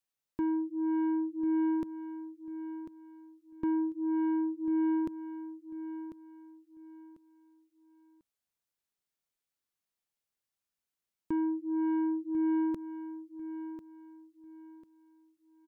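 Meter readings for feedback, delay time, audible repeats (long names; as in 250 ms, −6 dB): 28%, 1,045 ms, 3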